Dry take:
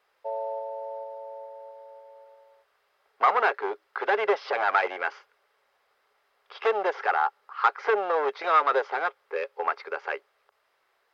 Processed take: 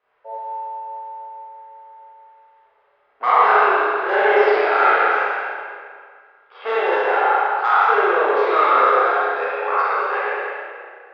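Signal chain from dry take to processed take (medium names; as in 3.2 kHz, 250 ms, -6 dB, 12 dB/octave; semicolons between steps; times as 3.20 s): spectral sustain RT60 1.95 s; spring tank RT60 1.4 s, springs 31/39 ms, chirp 25 ms, DRR -8 dB; level-controlled noise filter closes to 2.6 kHz, open at -9.5 dBFS; trim -5 dB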